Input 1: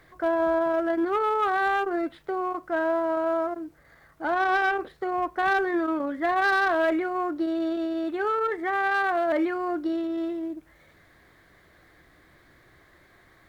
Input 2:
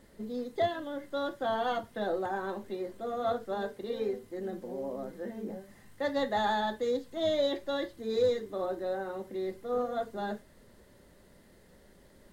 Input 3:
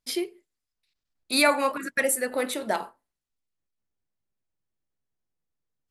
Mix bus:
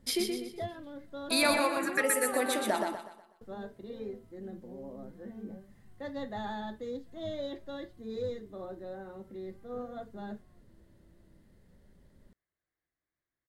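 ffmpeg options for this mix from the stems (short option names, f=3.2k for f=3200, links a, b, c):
-filter_complex "[0:a]alimiter=level_in=5dB:limit=-24dB:level=0:latency=1,volume=-5dB,adelay=850,volume=-4dB[a];[1:a]bass=f=250:g=12,treble=f=4k:g=-2,volume=-10dB,asplit=3[b][c][d];[b]atrim=end=1.6,asetpts=PTS-STARTPTS,afade=t=out:st=1.596:d=0.004:c=hsin[e];[c]atrim=start=1.6:end=3.41,asetpts=PTS-STARTPTS,volume=0[f];[d]atrim=start=3.41,asetpts=PTS-STARTPTS,afade=t=in:d=0.004:c=hsin[g];[e][f][g]concat=n=3:v=0:a=1[h];[2:a]acompressor=threshold=-31dB:ratio=2,volume=1dB,asplit=3[i][j][k];[j]volume=-4.5dB[l];[k]apad=whole_len=632048[m];[a][m]sidechaingate=range=-33dB:threshold=-51dB:ratio=16:detection=peak[n];[l]aecho=0:1:123|246|369|492|615:1|0.39|0.152|0.0593|0.0231[o];[n][h][i][o]amix=inputs=4:normalize=0"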